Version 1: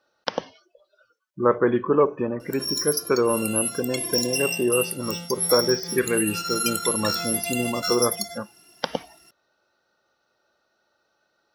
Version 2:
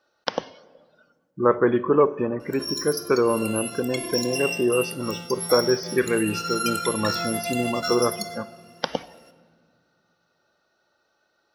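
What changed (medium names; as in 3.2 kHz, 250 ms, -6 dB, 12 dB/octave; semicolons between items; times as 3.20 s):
background: add treble shelf 4.9 kHz -11 dB; reverb: on, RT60 1.8 s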